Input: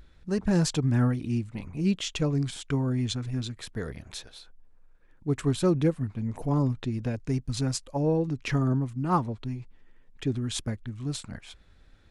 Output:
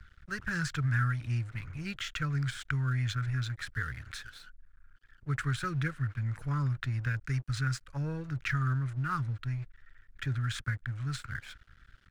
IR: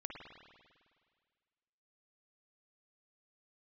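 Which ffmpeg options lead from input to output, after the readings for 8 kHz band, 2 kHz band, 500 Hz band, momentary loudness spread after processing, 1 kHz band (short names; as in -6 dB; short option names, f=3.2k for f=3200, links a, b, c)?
-9.0 dB, +6.5 dB, -18.0 dB, 10 LU, -4.0 dB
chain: -filter_complex "[0:a]firequalizer=gain_entry='entry(130,0);entry(180,-19);entry(770,-23);entry(1400,10);entry(2700,-5);entry(11000,-10)':delay=0.05:min_phase=1,acrossover=split=93|320|2700[a][b][c][d];[a]acompressor=threshold=-49dB:ratio=4[e];[b]acompressor=threshold=-34dB:ratio=4[f];[c]acompressor=threshold=-38dB:ratio=4[g];[d]acompressor=threshold=-46dB:ratio=4[h];[e][f][g][h]amix=inputs=4:normalize=0,aeval=exprs='sgn(val(0))*max(abs(val(0))-0.00119,0)':c=same,volume=4.5dB"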